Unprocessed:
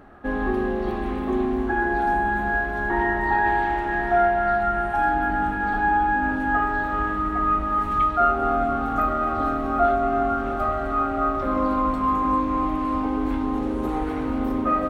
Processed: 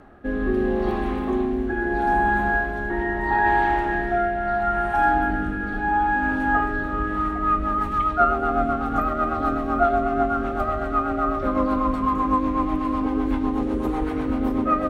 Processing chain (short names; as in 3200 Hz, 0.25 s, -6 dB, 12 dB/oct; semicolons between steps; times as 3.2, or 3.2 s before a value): rotary speaker horn 0.75 Hz, later 8 Hz, at 6.95; gain +3 dB